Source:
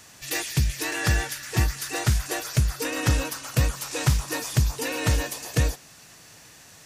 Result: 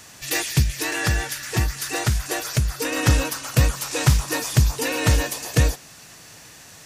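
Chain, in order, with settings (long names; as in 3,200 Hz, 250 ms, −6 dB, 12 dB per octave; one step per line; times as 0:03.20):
0:00.62–0:02.92: downward compressor 1.5 to 1, threshold −28 dBFS, peak gain reduction 4.5 dB
level +4.5 dB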